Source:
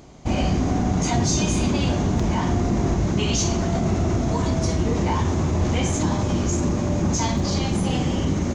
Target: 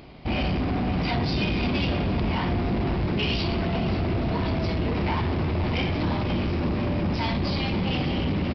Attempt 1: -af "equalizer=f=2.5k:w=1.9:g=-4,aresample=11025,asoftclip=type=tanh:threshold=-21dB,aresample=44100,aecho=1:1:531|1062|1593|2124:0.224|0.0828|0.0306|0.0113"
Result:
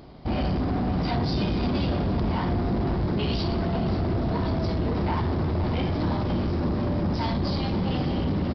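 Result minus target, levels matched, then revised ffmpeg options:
2000 Hz band -6.0 dB
-af "equalizer=f=2.5k:w=1.9:g=7.5,aresample=11025,asoftclip=type=tanh:threshold=-21dB,aresample=44100,aecho=1:1:531|1062|1593|2124:0.224|0.0828|0.0306|0.0113"

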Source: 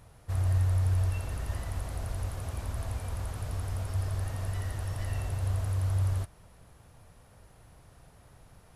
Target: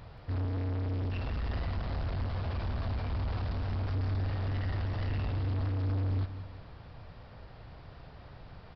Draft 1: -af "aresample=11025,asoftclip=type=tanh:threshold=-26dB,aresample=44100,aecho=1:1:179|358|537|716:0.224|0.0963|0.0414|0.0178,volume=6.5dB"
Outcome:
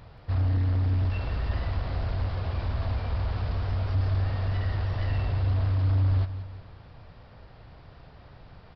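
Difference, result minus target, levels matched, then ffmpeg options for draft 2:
soft clip: distortion -8 dB
-af "aresample=11025,asoftclip=type=tanh:threshold=-36.5dB,aresample=44100,aecho=1:1:179|358|537|716:0.224|0.0963|0.0414|0.0178,volume=6.5dB"

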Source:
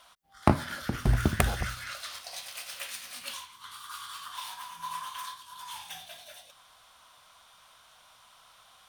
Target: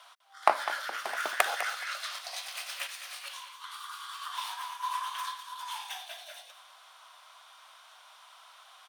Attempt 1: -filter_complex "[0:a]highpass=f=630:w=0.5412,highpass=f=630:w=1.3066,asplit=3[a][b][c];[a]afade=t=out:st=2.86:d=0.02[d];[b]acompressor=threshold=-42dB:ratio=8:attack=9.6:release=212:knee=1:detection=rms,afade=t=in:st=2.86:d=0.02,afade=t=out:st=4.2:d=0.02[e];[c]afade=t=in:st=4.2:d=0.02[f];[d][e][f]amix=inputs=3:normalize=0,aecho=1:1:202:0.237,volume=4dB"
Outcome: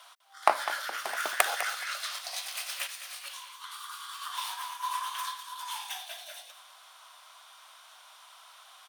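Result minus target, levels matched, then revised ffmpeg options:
8000 Hz band +3.5 dB
-filter_complex "[0:a]highpass=f=630:w=0.5412,highpass=f=630:w=1.3066,highshelf=f=6k:g=-7,asplit=3[a][b][c];[a]afade=t=out:st=2.86:d=0.02[d];[b]acompressor=threshold=-42dB:ratio=8:attack=9.6:release=212:knee=1:detection=rms,afade=t=in:st=2.86:d=0.02,afade=t=out:st=4.2:d=0.02[e];[c]afade=t=in:st=4.2:d=0.02[f];[d][e][f]amix=inputs=3:normalize=0,aecho=1:1:202:0.237,volume=4dB"

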